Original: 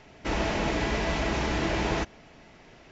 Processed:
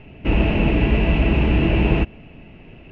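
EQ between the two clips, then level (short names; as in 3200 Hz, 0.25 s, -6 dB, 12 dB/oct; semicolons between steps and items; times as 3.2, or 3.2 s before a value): synth low-pass 2700 Hz, resonance Q 11; tilt shelf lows +9 dB, about 780 Hz; low shelf 360 Hz +6 dB; 0.0 dB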